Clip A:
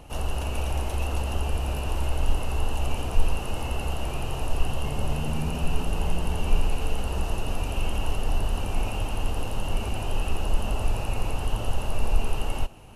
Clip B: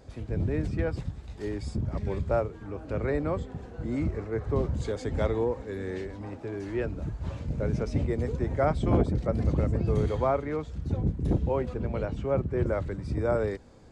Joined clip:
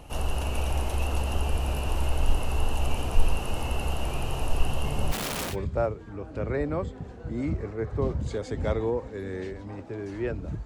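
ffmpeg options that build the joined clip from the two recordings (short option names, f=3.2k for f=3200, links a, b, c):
-filter_complex "[0:a]asplit=3[a][b][c];[a]afade=t=out:st=5.11:d=0.02[d];[b]aeval=exprs='(mod(21.1*val(0)+1,2)-1)/21.1':c=same,afade=t=in:st=5.11:d=0.02,afade=t=out:st=5.56:d=0.02[e];[c]afade=t=in:st=5.56:d=0.02[f];[d][e][f]amix=inputs=3:normalize=0,apad=whole_dur=10.65,atrim=end=10.65,atrim=end=5.56,asetpts=PTS-STARTPTS[g];[1:a]atrim=start=2.02:end=7.19,asetpts=PTS-STARTPTS[h];[g][h]acrossfade=d=0.08:c1=tri:c2=tri"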